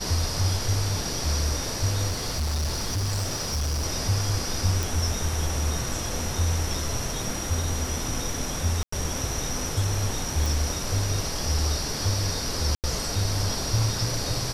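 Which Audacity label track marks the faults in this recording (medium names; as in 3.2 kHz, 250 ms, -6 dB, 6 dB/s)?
2.070000	3.860000	clipped -23 dBFS
4.830000	4.830000	pop
8.830000	8.920000	dropout 94 ms
10.460000	10.460000	pop
12.750000	12.840000	dropout 88 ms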